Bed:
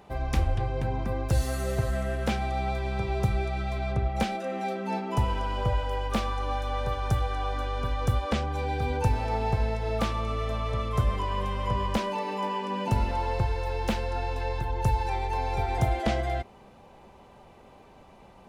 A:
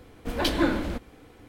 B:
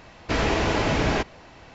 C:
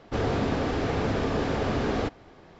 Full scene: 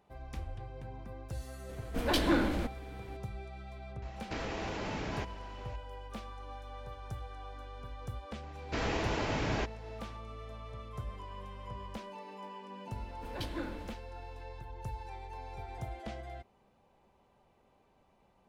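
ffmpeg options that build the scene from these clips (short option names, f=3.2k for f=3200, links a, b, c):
-filter_complex "[1:a]asplit=2[a][b];[2:a]asplit=2[c][d];[0:a]volume=-16dB[e];[a]asoftclip=type=tanh:threshold=-17.5dB[f];[c]acompressor=threshold=-28dB:ratio=6:attack=3.2:release=140:knee=1:detection=peak[g];[f]atrim=end=1.48,asetpts=PTS-STARTPTS,volume=-2dB,afade=t=in:d=0.004:c=hsin,afade=t=out:st=1.476:d=0.004:c=hsin,adelay=1690[h];[g]atrim=end=1.74,asetpts=PTS-STARTPTS,volume=-6.5dB,afade=t=in:d=0.004:c=hsin,afade=t=out:st=1.736:d=0.004:c=hsin,adelay=4020[i];[d]atrim=end=1.74,asetpts=PTS-STARTPTS,volume=-10.5dB,afade=t=in:d=0.004:c=hsin,afade=t=out:st=1.736:d=0.004:c=hsin,adelay=8430[j];[b]atrim=end=1.48,asetpts=PTS-STARTPTS,volume=-16dB,afade=t=in:d=0.004:c=hsin,afade=t=out:st=1.476:d=0.004:c=hsin,adelay=12960[k];[e][h][i][j][k]amix=inputs=5:normalize=0"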